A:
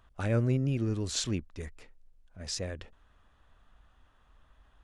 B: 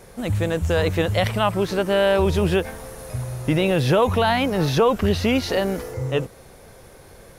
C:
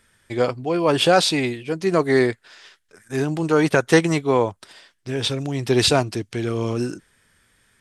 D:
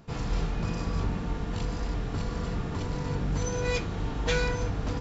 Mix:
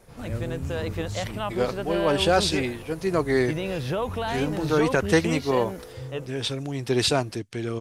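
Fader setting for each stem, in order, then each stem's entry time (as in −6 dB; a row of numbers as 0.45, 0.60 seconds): −7.0, −10.0, −5.0, −13.0 decibels; 0.00, 0.00, 1.20, 0.00 seconds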